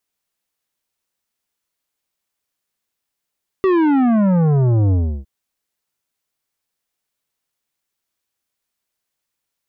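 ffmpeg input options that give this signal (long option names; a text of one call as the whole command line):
ffmpeg -f lavfi -i "aevalsrc='0.224*clip((1.61-t)/0.33,0,1)*tanh(3.76*sin(2*PI*390*1.61/log(65/390)*(exp(log(65/390)*t/1.61)-1)))/tanh(3.76)':duration=1.61:sample_rate=44100" out.wav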